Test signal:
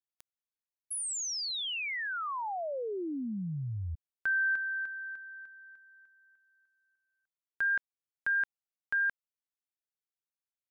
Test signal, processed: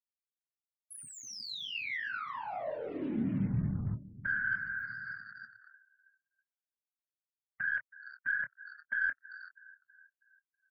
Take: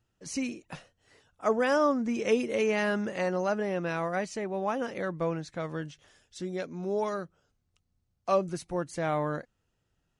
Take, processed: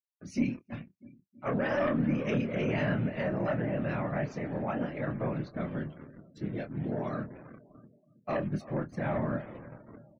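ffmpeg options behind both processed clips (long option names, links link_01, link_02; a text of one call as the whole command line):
ffmpeg -i in.wav -filter_complex "[0:a]afftfilt=real='hypot(re,im)*cos(2*PI*random(0))':imag='hypot(re,im)*sin(2*PI*random(1))':win_size=512:overlap=0.75,equalizer=frequency=590:width_type=o:width=0.36:gain=10.5,asplit=2[link_01][link_02];[link_02]asplit=4[link_03][link_04][link_05][link_06];[link_03]adelay=389,afreqshift=-76,volume=-19dB[link_07];[link_04]adelay=778,afreqshift=-152,volume=-25dB[link_08];[link_05]adelay=1167,afreqshift=-228,volume=-31dB[link_09];[link_06]adelay=1556,afreqshift=-304,volume=-37.1dB[link_10];[link_07][link_08][link_09][link_10]amix=inputs=4:normalize=0[link_11];[link_01][link_11]amix=inputs=2:normalize=0,agate=range=-51dB:threshold=-55dB:ratio=3:release=249:detection=rms,asoftclip=type=tanh:threshold=-22dB,acrusher=bits=7:mix=0:aa=0.5,equalizer=frequency=125:width_type=o:width=1:gain=10,equalizer=frequency=250:width_type=o:width=1:gain=8,equalizer=frequency=500:width_type=o:width=1:gain=-7,equalizer=frequency=2000:width_type=o:width=1:gain=4,equalizer=frequency=8000:width_type=o:width=1:gain=-9,aeval=exprs='0.133*(cos(1*acos(clip(val(0)/0.133,-1,1)))-cos(1*PI/2))+0.00188*(cos(4*acos(clip(val(0)/0.133,-1,1)))-cos(4*PI/2))':channel_layout=same,asplit=2[link_12][link_13];[link_13]adelay=26,volume=-7.5dB[link_14];[link_12][link_14]amix=inputs=2:normalize=0,asplit=2[link_15][link_16];[link_16]aecho=0:1:323|646|969|1292|1615:0.112|0.0628|0.0352|0.0197|0.011[link_17];[link_15][link_17]amix=inputs=2:normalize=0,afftdn=noise_reduction=33:noise_floor=-54" out.wav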